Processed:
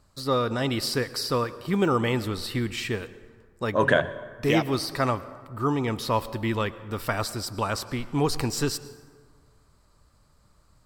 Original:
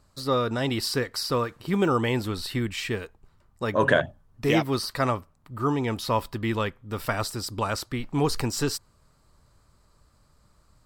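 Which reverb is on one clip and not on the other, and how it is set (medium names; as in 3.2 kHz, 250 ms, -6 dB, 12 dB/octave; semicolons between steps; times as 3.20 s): plate-style reverb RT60 1.6 s, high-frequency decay 0.55×, pre-delay 90 ms, DRR 16 dB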